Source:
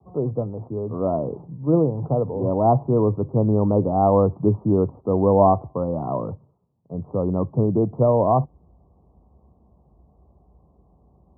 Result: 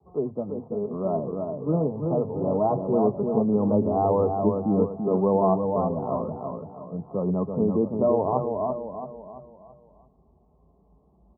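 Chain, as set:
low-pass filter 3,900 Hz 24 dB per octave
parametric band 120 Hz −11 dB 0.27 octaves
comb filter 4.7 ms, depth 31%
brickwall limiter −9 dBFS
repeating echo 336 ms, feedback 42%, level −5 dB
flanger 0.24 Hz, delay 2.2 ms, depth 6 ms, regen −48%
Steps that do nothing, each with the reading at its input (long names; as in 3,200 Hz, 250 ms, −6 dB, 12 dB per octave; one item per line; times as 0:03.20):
low-pass filter 3,900 Hz: nothing at its input above 1,200 Hz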